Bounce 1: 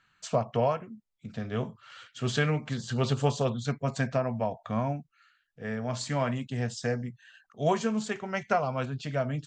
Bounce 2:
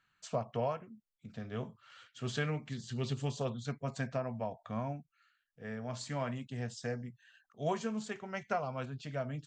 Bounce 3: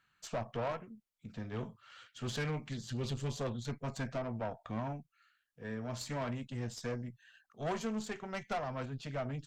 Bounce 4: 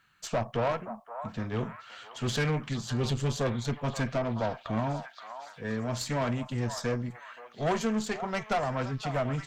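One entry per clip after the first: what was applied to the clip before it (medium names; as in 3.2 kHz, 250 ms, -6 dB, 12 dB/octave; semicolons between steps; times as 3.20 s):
time-frequency box 2.63–3.37 s, 420–1700 Hz -7 dB; trim -8 dB
valve stage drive 35 dB, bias 0.6; trim +4 dB
repeats whose band climbs or falls 524 ms, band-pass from 950 Hz, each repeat 0.7 oct, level -6.5 dB; trim +8 dB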